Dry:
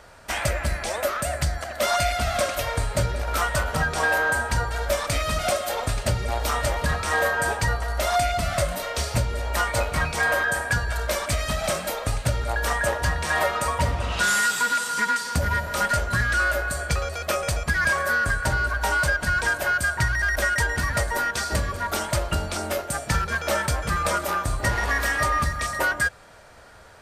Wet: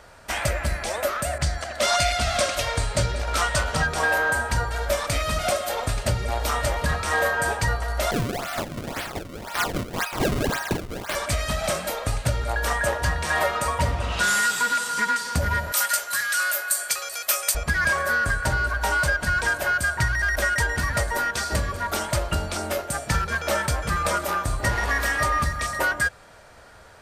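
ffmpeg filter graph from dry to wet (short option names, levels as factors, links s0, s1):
-filter_complex "[0:a]asettb=1/sr,asplit=3[s0][s1][s2];[s0]atrim=end=1.384[s3];[s1]atrim=start=1.38:end=3.87,asetpts=PTS-STARTPTS,afade=t=in:d=0.004:c=qsin,afade=t=out:st=2.486:d=0.004:c=qsin,lowpass=8400,adynamicequalizer=threshold=0.0141:dfrequency=2500:dqfactor=0.7:tfrequency=2500:tqfactor=0.7:attack=5:release=100:ratio=0.375:range=3:mode=boostabove:tftype=highshelf[s4];[s2]atrim=start=3.866[s5];[s3][s4]acrossfade=d=0.004:c1=hsin:c2=qsin[s6];[s6][s5]acrossfade=d=0.004:c1=qsin:c2=hsin,asettb=1/sr,asplit=3[s7][s8][s9];[s7]atrim=end=8.114[s10];[s8]atrim=start=8.11:end=11.15,asetpts=PTS-STARTPTS,afade=t=in:d=0.004:c=qsin,afade=t=out:st=3.036:d=0.004:c=qsin,highpass=f=740:w=0.5412,highpass=f=740:w=1.3066,acrusher=samples=30:mix=1:aa=0.000001:lfo=1:lforange=48:lforate=1.9[s11];[s9]atrim=start=11.146[s12];[s10][s11]acrossfade=d=0.004:c1=hsin:c2=qsin[s13];[s13][s12]acrossfade=d=0.004:c1=qsin:c2=hsin,asettb=1/sr,asplit=3[s14][s15][s16];[s14]atrim=end=15.724[s17];[s15]atrim=start=15.72:end=17.55,asetpts=PTS-STARTPTS,afade=t=in:d=0.004:c=qsin,afade=t=out:st=1.826:d=0.004:c=qsin,highpass=f=1400:p=1,aemphasis=mode=production:type=bsi[s18];[s16]atrim=start=17.546[s19];[s17][s18]acrossfade=d=0.004:c1=hsin:c2=qsin[s20];[s20][s19]acrossfade=d=0.004:c1=qsin:c2=hsin"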